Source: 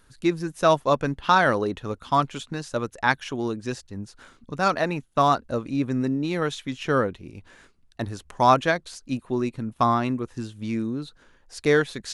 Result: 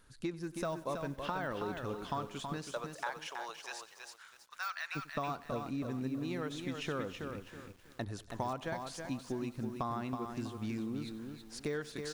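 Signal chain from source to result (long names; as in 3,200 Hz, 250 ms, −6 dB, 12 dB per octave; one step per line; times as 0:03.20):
de-essing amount 80%
0:02.62–0:04.95: high-pass filter 430 Hz → 1,500 Hz 24 dB per octave
downward compressor 5 to 1, threshold −30 dBFS, peak gain reduction 13.5 dB
repeating echo 94 ms, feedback 58%, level −19.5 dB
feedback echo at a low word length 324 ms, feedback 35%, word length 9 bits, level −5.5 dB
level −5.5 dB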